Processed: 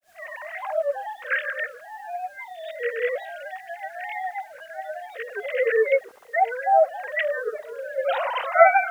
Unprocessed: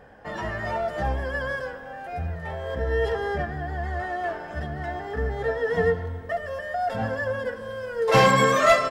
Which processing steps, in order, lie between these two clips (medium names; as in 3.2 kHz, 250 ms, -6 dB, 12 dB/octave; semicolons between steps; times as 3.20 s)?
formants replaced by sine waves; hum notches 50/100/150/200/250 Hz; word length cut 10-bit, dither triangular; granulator 252 ms, grains 10 per s, pitch spread up and down by 3 st; trim +2 dB